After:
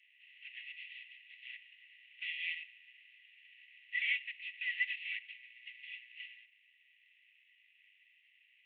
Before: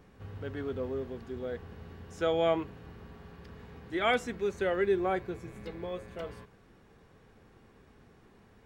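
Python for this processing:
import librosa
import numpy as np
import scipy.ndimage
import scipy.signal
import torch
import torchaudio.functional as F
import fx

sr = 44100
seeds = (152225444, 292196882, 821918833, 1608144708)

y = fx.cvsd(x, sr, bps=16000)
y = fx.dynamic_eq(y, sr, hz=2400.0, q=1.2, threshold_db=-52.0, ratio=4.0, max_db=3)
y = scipy.signal.sosfilt(scipy.signal.cheby1(6, 9, 1900.0, 'highpass', fs=sr, output='sos'), y)
y = F.gain(torch.from_numpy(y), 8.0).numpy()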